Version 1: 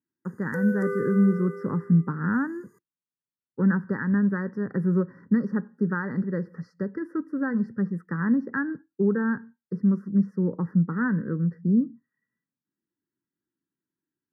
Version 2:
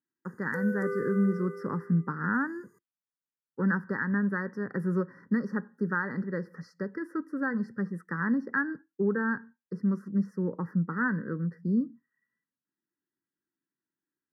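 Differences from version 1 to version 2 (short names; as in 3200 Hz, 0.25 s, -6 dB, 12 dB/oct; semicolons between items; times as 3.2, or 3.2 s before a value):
speech: add tilt +2.5 dB/oct; background -3.5 dB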